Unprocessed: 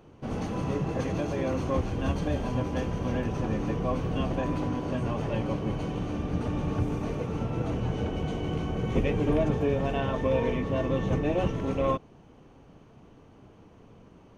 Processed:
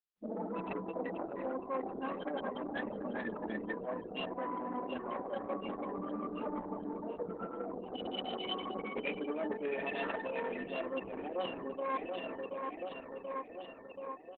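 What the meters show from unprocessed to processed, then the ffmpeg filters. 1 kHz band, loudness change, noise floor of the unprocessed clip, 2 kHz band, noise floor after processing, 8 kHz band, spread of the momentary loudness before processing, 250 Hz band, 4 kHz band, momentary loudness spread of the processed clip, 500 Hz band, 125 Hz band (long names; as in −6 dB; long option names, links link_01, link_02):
−4.5 dB, −10.0 dB, −54 dBFS, −3.0 dB, −50 dBFS, can't be measured, 5 LU, −11.0 dB, −1.0 dB, 5 LU, −8.0 dB, −24.5 dB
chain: -af "afftfilt=real='re*pow(10,12/40*sin(2*PI*(2*log(max(b,1)*sr/1024/100)/log(2)-(0.31)*(pts-256)/sr)))':imag='im*pow(10,12/40*sin(2*PI*(2*log(max(b,1)*sr/1024/100)/log(2)-(0.31)*(pts-256)/sr)))':win_size=1024:overlap=0.75,afftfilt=real='re*gte(hypot(re,im),0.0447)':imag='im*gte(hypot(re,im),0.0447)':win_size=1024:overlap=0.75,lowshelf=frequency=400:gain=-9.5,bandreject=frequency=1500:width=9,aecho=1:1:731|1462|2193|2924|3655|4386:0.211|0.123|0.0711|0.0412|0.0239|0.0139,areverse,acompressor=threshold=-40dB:ratio=5,areverse,crystalizer=i=7.5:c=0,aeval=exprs='0.0447*(cos(1*acos(clip(val(0)/0.0447,-1,1)))-cos(1*PI/2))+0.0178*(cos(2*acos(clip(val(0)/0.0447,-1,1)))-cos(2*PI/2))+0.00398*(cos(5*acos(clip(val(0)/0.0447,-1,1)))-cos(5*PI/2))+0.000708*(cos(7*acos(clip(val(0)/0.0447,-1,1)))-cos(7*PI/2))':channel_layout=same,afftfilt=real='re*between(b*sr/4096,180,5100)':imag='im*between(b*sr/4096,180,5100)':win_size=4096:overlap=0.75,volume=2.5dB" -ar 48000 -c:a libopus -b:a 8k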